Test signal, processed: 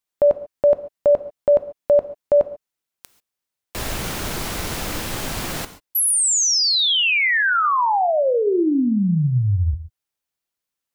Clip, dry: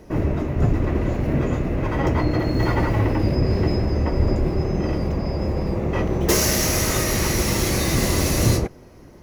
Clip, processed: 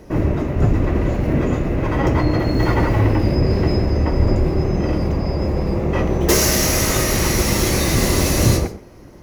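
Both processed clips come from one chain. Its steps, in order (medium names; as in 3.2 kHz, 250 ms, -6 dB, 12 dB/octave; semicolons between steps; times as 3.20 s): gated-style reverb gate 160 ms flat, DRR 11.5 dB; trim +3 dB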